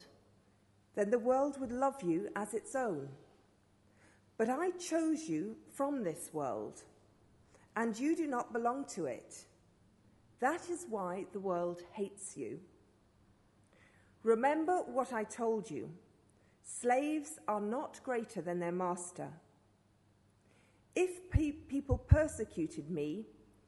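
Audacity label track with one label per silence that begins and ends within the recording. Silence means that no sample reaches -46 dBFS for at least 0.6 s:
3.130000	4.400000	silence
6.800000	7.760000	silence
9.410000	10.420000	silence
12.580000	14.250000	silence
15.920000	16.660000	silence
19.350000	20.960000	silence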